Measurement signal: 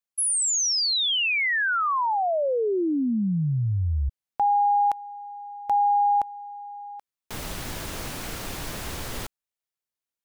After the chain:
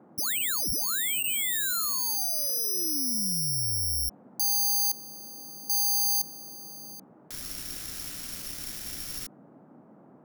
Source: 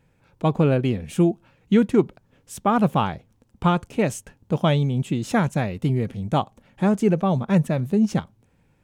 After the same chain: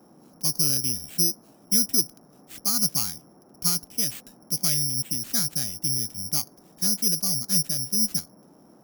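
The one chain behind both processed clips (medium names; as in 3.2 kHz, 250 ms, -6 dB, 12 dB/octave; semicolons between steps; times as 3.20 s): careless resampling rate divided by 8×, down none, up zero stuff; band noise 150–840 Hz -36 dBFS; high-order bell 640 Hz -9 dB; trim -13.5 dB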